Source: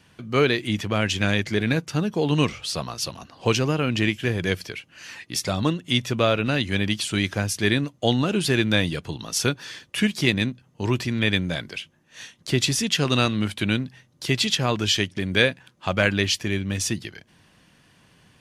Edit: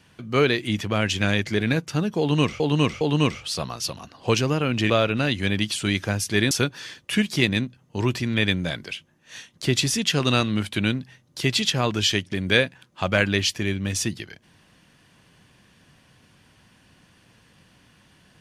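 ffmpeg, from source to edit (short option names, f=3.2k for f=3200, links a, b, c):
-filter_complex "[0:a]asplit=5[a][b][c][d][e];[a]atrim=end=2.602[f];[b]atrim=start=2.188:end=2.602[g];[c]atrim=start=2.188:end=4.082[h];[d]atrim=start=6.188:end=7.802[i];[e]atrim=start=9.358[j];[f][g]acrossfade=d=0.004:c1=hsin:c2=hsin[k];[k][h]acrossfade=d=0.004:c1=hsin:c2=hsin[l];[l][i]acrossfade=d=0.004:c1=hsin:c2=hsin[m];[m][j]acrossfade=d=0.004:c1=hsin:c2=hsin"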